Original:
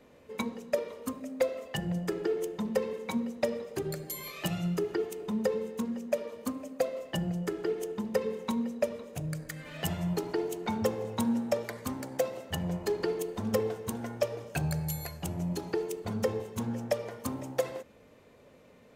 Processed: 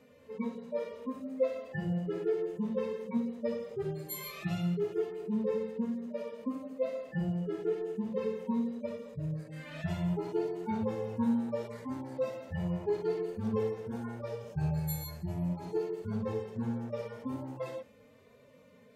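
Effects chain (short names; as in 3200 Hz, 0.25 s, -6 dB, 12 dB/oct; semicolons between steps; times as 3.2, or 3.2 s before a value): median-filter separation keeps harmonic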